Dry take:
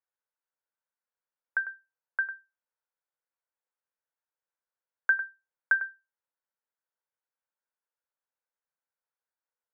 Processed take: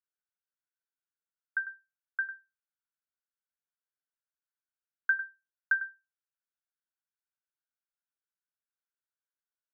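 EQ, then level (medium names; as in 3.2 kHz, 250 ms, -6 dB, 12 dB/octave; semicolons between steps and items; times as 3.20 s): band-pass filter 1.5 kHz, Q 4; -2.5 dB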